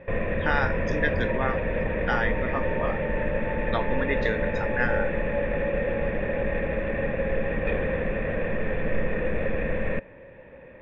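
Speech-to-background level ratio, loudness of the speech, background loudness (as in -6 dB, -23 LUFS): -2.5 dB, -30.5 LUFS, -28.0 LUFS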